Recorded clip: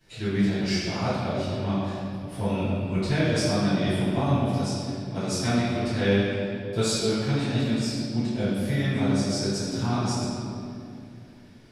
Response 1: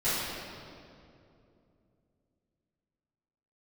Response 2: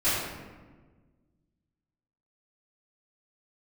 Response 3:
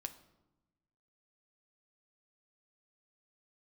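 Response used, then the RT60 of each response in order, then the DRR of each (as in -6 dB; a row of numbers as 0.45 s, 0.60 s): 1; 2.7 s, 1.4 s, 1.0 s; -17.0 dB, -15.0 dB, 7.5 dB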